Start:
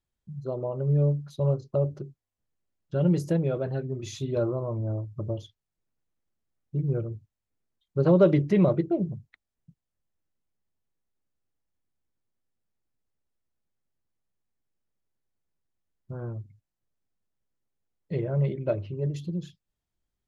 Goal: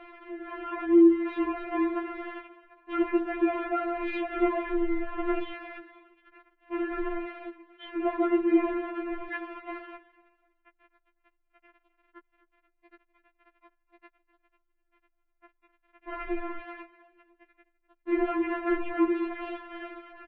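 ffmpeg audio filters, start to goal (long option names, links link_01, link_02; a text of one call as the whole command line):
ffmpeg -i in.wav -filter_complex "[0:a]aeval=exprs='val(0)+0.5*0.0376*sgn(val(0))':channel_layout=same,dynaudnorm=framelen=130:gausssize=11:maxgain=9.5dB,asplit=4[link_01][link_02][link_03][link_04];[link_02]adelay=251,afreqshift=43,volume=-18dB[link_05];[link_03]adelay=502,afreqshift=86,volume=-27.1dB[link_06];[link_04]adelay=753,afreqshift=129,volume=-36.2dB[link_07];[link_01][link_05][link_06][link_07]amix=inputs=4:normalize=0,highpass=frequency=190:width_type=q:width=0.5412,highpass=frequency=190:width_type=q:width=1.307,lowpass=frequency=2500:width_type=q:width=0.5176,lowpass=frequency=2500:width_type=q:width=0.7071,lowpass=frequency=2500:width_type=q:width=1.932,afreqshift=-99,afftfilt=real='re*4*eq(mod(b,16),0)':imag='im*4*eq(mod(b,16),0)':win_size=2048:overlap=0.75" out.wav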